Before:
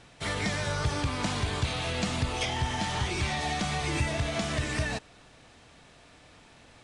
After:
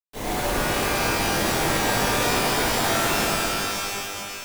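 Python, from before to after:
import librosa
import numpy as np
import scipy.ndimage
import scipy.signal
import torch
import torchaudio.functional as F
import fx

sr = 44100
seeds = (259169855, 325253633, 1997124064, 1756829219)

y = fx.filter_lfo_bandpass(x, sr, shape='saw_up', hz=6.2, low_hz=540.0, high_hz=5800.0, q=2.4)
y = fx.sample_hold(y, sr, seeds[0], rate_hz=1500.0, jitter_pct=20)
y = fx.stretch_vocoder_free(y, sr, factor=0.65)
y = fx.quant_dither(y, sr, seeds[1], bits=8, dither='none')
y = fx.rev_shimmer(y, sr, seeds[2], rt60_s=2.7, semitones=12, shimmer_db=-2, drr_db=-10.5)
y = y * 10.0 ** (7.0 / 20.0)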